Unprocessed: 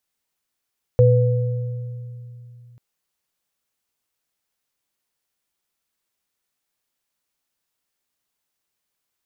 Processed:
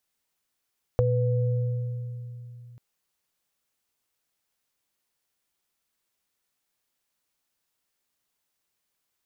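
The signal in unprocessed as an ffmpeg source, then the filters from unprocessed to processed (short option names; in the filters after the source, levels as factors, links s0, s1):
-f lavfi -i "aevalsrc='0.282*pow(10,-3*t/3.14)*sin(2*PI*120*t)+0.251*pow(10,-3*t/1.65)*sin(2*PI*497*t)':d=1.79:s=44100"
-af "acompressor=threshold=0.0891:ratio=6"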